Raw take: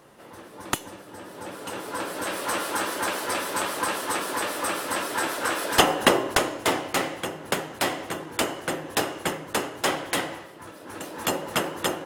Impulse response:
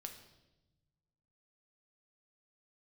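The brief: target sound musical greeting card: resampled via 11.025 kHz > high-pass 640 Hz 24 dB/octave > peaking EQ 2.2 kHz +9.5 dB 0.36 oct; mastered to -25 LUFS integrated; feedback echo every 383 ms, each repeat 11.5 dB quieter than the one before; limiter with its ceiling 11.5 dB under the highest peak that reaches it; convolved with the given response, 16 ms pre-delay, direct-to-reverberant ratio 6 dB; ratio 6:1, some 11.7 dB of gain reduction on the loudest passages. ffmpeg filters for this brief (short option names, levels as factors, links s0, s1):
-filter_complex "[0:a]acompressor=threshold=0.0562:ratio=6,alimiter=limit=0.1:level=0:latency=1,aecho=1:1:383|766|1149:0.266|0.0718|0.0194,asplit=2[s0][s1];[1:a]atrim=start_sample=2205,adelay=16[s2];[s1][s2]afir=irnorm=-1:irlink=0,volume=0.841[s3];[s0][s3]amix=inputs=2:normalize=0,aresample=11025,aresample=44100,highpass=f=640:w=0.5412,highpass=f=640:w=1.3066,equalizer=f=2200:t=o:w=0.36:g=9.5,volume=2"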